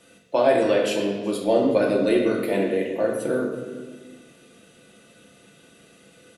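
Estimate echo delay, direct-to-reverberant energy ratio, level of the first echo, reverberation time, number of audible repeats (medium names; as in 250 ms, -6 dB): 376 ms, -1.5 dB, -20.5 dB, 1.4 s, 1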